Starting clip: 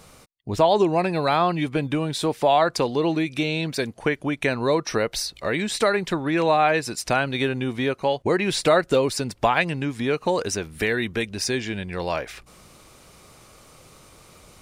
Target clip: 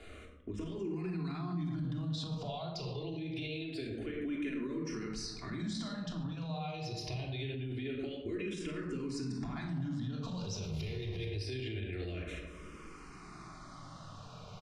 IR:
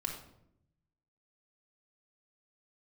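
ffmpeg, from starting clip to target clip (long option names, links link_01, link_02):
-filter_complex "[0:a]asettb=1/sr,asplit=3[link_01][link_02][link_03];[link_01]atrim=end=10.234[link_04];[link_02]atrim=start=10.23:end=11.26,asetpts=PTS-STARTPTS,afade=type=in:duration=0.004:curve=qsin,afade=type=out:start_time=1.026:duration=0.004:curve=qsin,aeval=exprs='val(0)+0.5*0.0422*sgn(val(0))':channel_layout=same[link_05];[link_03]atrim=start=11.256[link_06];[link_04][link_05]acrossfade=duration=0.004:curve1=hsin:curve2=qsin[link_07];[link_07][link_06]acrossfade=duration=0.004:curve1=qsin:curve2=hsin,asplit=2[link_08][link_09];[link_09]adelay=108,lowpass=frequency=1000:poles=1,volume=-9.5dB,asplit=2[link_10][link_11];[link_11]adelay=108,lowpass=frequency=1000:poles=1,volume=0.5,asplit=2[link_12][link_13];[link_13]adelay=108,lowpass=frequency=1000:poles=1,volume=0.5,asplit=2[link_14][link_15];[link_15]adelay=108,lowpass=frequency=1000:poles=1,volume=0.5,asplit=2[link_16][link_17];[link_17]adelay=108,lowpass=frequency=1000:poles=1,volume=0.5,asplit=2[link_18][link_19];[link_19]adelay=108,lowpass=frequency=1000:poles=1,volume=0.5[link_20];[link_08][link_10][link_12][link_14][link_16][link_18][link_20]amix=inputs=7:normalize=0,acompressor=threshold=-28dB:ratio=4,lowpass=4300,acrossover=split=320|3000[link_21][link_22][link_23];[link_22]acompressor=threshold=-47dB:ratio=5[link_24];[link_21][link_24][link_23]amix=inputs=3:normalize=0[link_25];[1:a]atrim=start_sample=2205,afade=type=out:start_time=0.35:duration=0.01,atrim=end_sample=15876[link_26];[link_25][link_26]afir=irnorm=-1:irlink=0,alimiter=level_in=5.5dB:limit=-24dB:level=0:latency=1:release=20,volume=-5.5dB,asplit=2[link_27][link_28];[link_28]afreqshift=-0.25[link_29];[link_27][link_29]amix=inputs=2:normalize=1,volume=1dB"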